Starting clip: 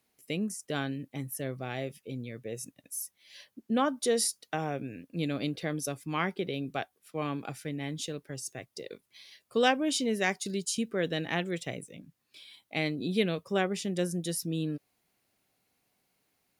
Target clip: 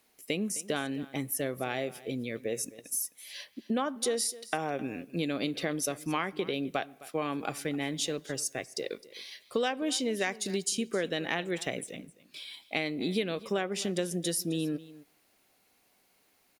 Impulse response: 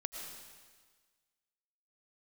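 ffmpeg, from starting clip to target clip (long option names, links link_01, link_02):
-filter_complex "[0:a]equalizer=frequency=120:width_type=o:width=1.4:gain=-10,acompressor=threshold=-35dB:ratio=6,aecho=1:1:261:0.119,asplit=2[link_01][link_02];[1:a]atrim=start_sample=2205,asetrate=74970,aresample=44100,highshelf=frequency=5100:gain=-11.5[link_03];[link_02][link_03]afir=irnorm=-1:irlink=0,volume=-14.5dB[link_04];[link_01][link_04]amix=inputs=2:normalize=0,volume=7dB"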